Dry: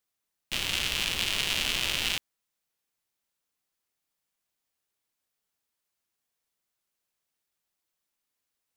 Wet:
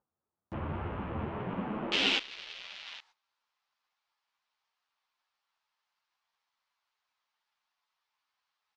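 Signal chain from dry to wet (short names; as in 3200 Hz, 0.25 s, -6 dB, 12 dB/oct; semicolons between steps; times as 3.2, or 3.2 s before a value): low shelf 230 Hz +11 dB; upward compressor, threshold -35 dBFS; bell 85 Hz -11 dB 2.9 oct; echo 0.81 s -20 dB; high-pass sweep 92 Hz -> 940 Hz, 1.14–3.02; sample leveller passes 2; LPF 1200 Hz 24 dB/oct, from 1.92 s 5000 Hz; gate -56 dBFS, range -17 dB; ensemble effect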